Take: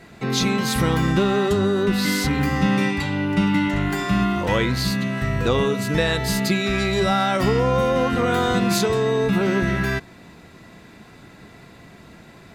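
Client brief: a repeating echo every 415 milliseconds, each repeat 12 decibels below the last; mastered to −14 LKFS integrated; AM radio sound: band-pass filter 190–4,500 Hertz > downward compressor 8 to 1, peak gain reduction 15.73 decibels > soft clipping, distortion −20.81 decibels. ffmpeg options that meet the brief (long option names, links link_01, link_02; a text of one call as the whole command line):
ffmpeg -i in.wav -af "highpass=190,lowpass=4500,aecho=1:1:415|830|1245:0.251|0.0628|0.0157,acompressor=threshold=-32dB:ratio=8,asoftclip=threshold=-27dB,volume=22.5dB" out.wav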